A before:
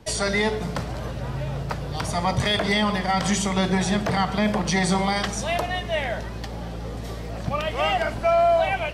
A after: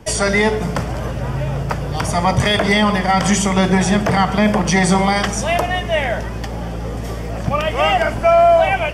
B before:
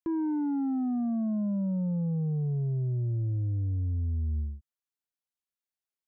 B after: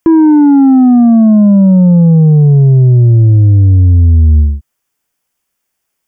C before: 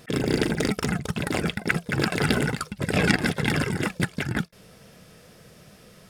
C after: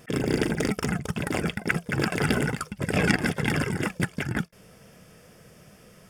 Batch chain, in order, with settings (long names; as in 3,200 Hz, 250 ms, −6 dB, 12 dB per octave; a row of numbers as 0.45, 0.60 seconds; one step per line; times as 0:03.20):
parametric band 4,000 Hz −13 dB 0.24 octaves
normalise the peak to −3 dBFS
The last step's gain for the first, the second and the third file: +7.5, +24.0, −1.0 decibels